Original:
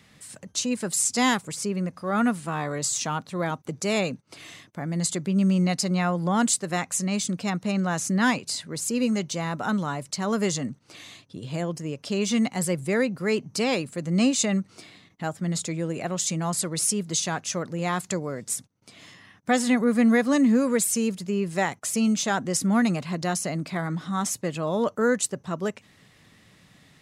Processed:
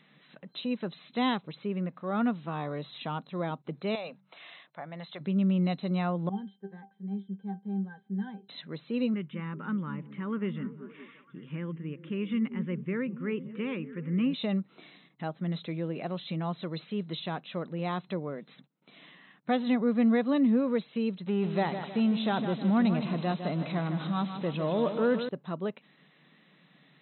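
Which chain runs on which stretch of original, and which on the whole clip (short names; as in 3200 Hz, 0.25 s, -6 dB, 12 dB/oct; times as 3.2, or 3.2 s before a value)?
3.95–5.21 resonant low shelf 460 Hz -10.5 dB, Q 1.5 + de-hum 47.88 Hz, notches 4 + compressor 3:1, threshold -28 dBFS
6.29–8.49 octave resonator G, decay 0.16 s + mismatched tape noise reduction decoder only
9.14–14.34 fixed phaser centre 1700 Hz, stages 4 + delay with a stepping band-pass 0.19 s, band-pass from 210 Hz, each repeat 0.7 oct, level -9 dB
21.27–25.29 zero-crossing step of -30 dBFS + feedback echo 0.156 s, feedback 41%, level -9 dB
whole clip: FFT band-pass 130–4100 Hz; dynamic EQ 1800 Hz, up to -7 dB, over -43 dBFS, Q 1.4; gain -4.5 dB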